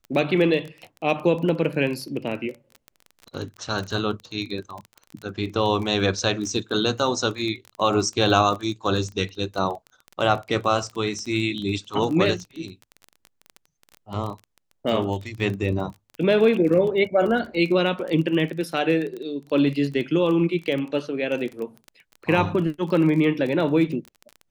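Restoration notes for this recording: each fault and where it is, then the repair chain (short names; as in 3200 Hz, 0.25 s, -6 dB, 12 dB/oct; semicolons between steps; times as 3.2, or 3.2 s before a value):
crackle 23/s -29 dBFS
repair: de-click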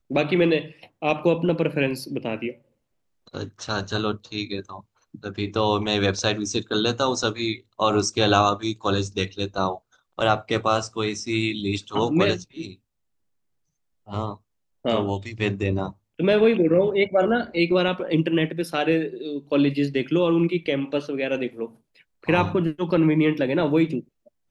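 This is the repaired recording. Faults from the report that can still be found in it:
none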